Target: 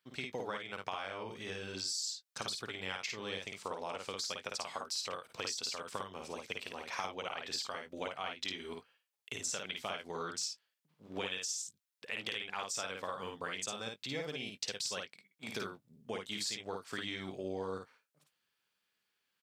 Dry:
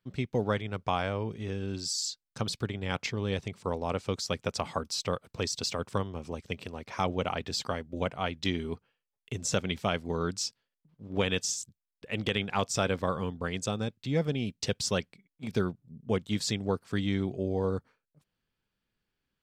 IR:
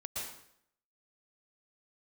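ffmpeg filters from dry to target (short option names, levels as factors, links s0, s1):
-filter_complex "[0:a]highpass=f=1300:p=1,acompressor=threshold=0.00891:ratio=6,asplit=2[s0][s1];[s1]aecho=0:1:53|73:0.668|0.168[s2];[s0][s2]amix=inputs=2:normalize=0,volume=1.58"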